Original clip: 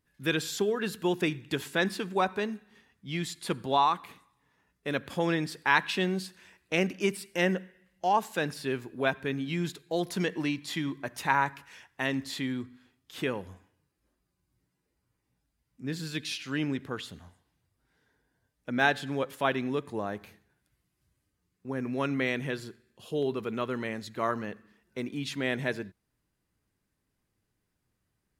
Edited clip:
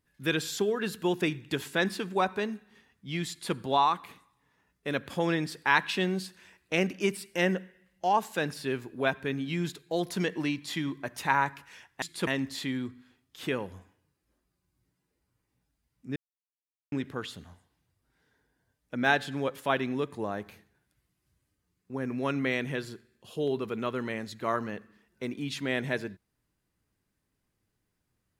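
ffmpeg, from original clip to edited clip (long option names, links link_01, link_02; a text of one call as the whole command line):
ffmpeg -i in.wav -filter_complex "[0:a]asplit=5[link_01][link_02][link_03][link_04][link_05];[link_01]atrim=end=12.022[link_06];[link_02]atrim=start=3.288:end=3.542[link_07];[link_03]atrim=start=12.018:end=15.91,asetpts=PTS-STARTPTS,afade=type=out:start_time=3.888:duration=0.004:curve=hsin[link_08];[link_04]atrim=start=15.91:end=16.67,asetpts=PTS-STARTPTS,volume=0[link_09];[link_05]atrim=start=16.67,asetpts=PTS-STARTPTS,afade=type=in:duration=0.004:curve=hsin[link_10];[link_06][link_07]acrossfade=duration=0.004:curve1=hsin:curve2=hsin[link_11];[link_08][link_09][link_10]concat=n=3:v=0:a=1[link_12];[link_11][link_12]acrossfade=duration=0.004:curve1=hsin:curve2=hsin" out.wav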